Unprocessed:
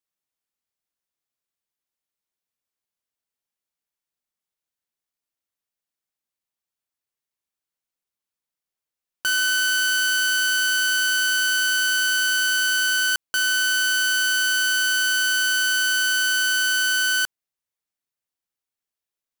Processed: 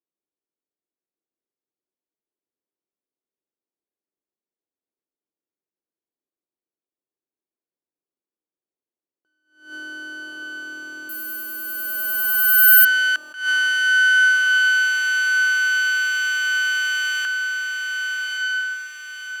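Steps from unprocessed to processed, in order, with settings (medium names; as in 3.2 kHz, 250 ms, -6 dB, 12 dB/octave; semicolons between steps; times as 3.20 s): band-pass sweep 350 Hz -> 2 kHz, 11.59–12.98 s; echo that smears into a reverb 1213 ms, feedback 52%, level -5 dB; 11.09–12.85 s: careless resampling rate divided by 3×, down none, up zero stuff; attacks held to a fixed rise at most 130 dB/s; trim +8 dB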